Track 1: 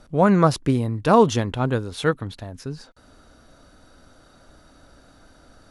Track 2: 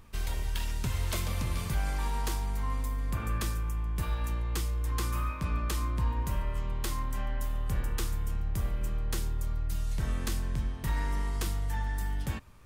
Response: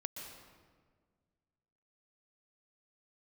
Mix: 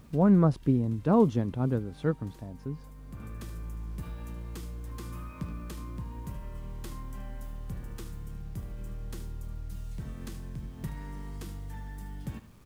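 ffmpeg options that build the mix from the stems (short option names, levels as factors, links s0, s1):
-filter_complex "[0:a]highshelf=f=2200:g=-11.5,volume=0.224,asplit=2[s0][s1];[1:a]acompressor=threshold=0.0178:ratio=8,acrusher=bits=9:mix=0:aa=0.000001,volume=0.596,asplit=2[s2][s3];[s3]volume=0.237[s4];[s1]apad=whole_len=558201[s5];[s2][s5]sidechaincompress=threshold=0.00708:ratio=8:attack=11:release=1340[s6];[s4]aecho=0:1:75:1[s7];[s0][s6][s7]amix=inputs=3:normalize=0,equalizer=f=190:t=o:w=2.5:g=10.5"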